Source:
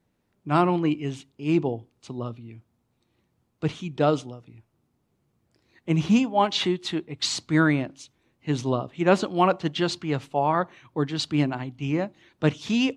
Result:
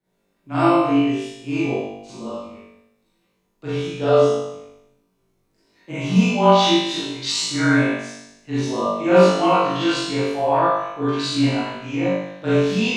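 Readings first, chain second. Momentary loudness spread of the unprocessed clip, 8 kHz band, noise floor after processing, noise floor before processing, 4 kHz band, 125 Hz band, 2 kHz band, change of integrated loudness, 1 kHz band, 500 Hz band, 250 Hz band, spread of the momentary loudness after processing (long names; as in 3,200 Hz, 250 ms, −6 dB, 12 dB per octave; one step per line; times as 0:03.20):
13 LU, +6.0 dB, −68 dBFS, −73 dBFS, +6.0 dB, +3.0 dB, +5.5 dB, +6.0 dB, +6.0 dB, +8.0 dB, +4.5 dB, 14 LU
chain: parametric band 110 Hz −13.5 dB 0.62 octaves
on a send: flutter between parallel walls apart 3.4 metres, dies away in 0.84 s
on the sum: frequency shifter −19 Hz
four-comb reverb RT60 0.57 s, combs from 32 ms, DRR −9 dB
level −8.5 dB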